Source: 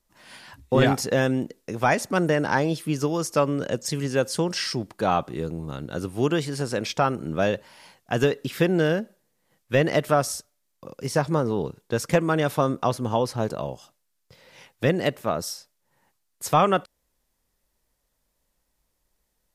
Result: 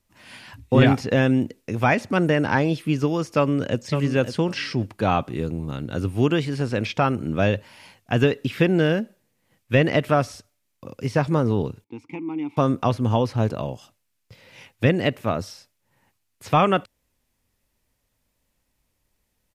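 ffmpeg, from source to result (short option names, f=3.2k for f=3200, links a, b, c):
-filter_complex "[0:a]asplit=2[a][b];[b]afade=t=in:st=3.37:d=0.01,afade=t=out:st=3.77:d=0.01,aecho=0:1:550|1100:0.334965|0.0502448[c];[a][c]amix=inputs=2:normalize=0,asettb=1/sr,asplit=3[d][e][f];[d]atrim=end=11.844[g];[e]atrim=start=11.84:end=12.57,asetpts=PTS-STARTPTS,afade=t=in:d=0.004:c=qsin,afade=t=out:st=0.726:d=0.004:c=qsin,asplit=3[h][i][j];[h]bandpass=f=300:t=q:w=8,volume=0dB[k];[i]bandpass=f=870:t=q:w=8,volume=-6dB[l];[j]bandpass=f=2.24k:t=q:w=8,volume=-9dB[m];[k][l][m]amix=inputs=3:normalize=0[n];[f]atrim=start=12.566[o];[g][n]acrossfade=d=0.004:c1=hsin:c2=qsin[p];[p][o]acrossfade=d=0.004:c1=qsin:c2=hsin,acrossover=split=4400[q][r];[r]acompressor=threshold=-48dB:ratio=4:attack=1:release=60[s];[q][s]amix=inputs=2:normalize=0,equalizer=f=100:t=o:w=0.67:g=11,equalizer=f=250:t=o:w=0.67:g=5,equalizer=f=2.5k:t=o:w=0.67:g=6"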